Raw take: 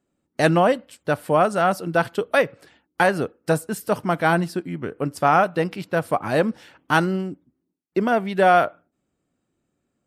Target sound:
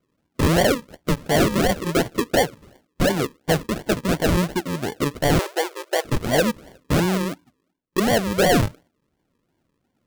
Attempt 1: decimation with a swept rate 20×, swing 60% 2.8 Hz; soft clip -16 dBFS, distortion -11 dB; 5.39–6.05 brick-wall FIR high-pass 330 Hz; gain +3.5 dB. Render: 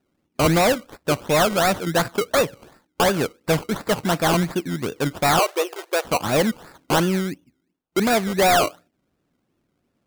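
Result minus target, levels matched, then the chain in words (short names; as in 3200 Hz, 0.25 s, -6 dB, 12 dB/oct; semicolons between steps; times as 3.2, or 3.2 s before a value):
decimation with a swept rate: distortion -15 dB
decimation with a swept rate 48×, swing 60% 2.8 Hz; soft clip -16 dBFS, distortion -11 dB; 5.39–6.05 brick-wall FIR high-pass 330 Hz; gain +3.5 dB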